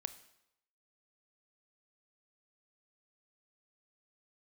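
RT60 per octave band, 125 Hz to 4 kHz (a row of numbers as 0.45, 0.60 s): 0.75, 0.75, 0.80, 0.85, 0.75, 0.75 s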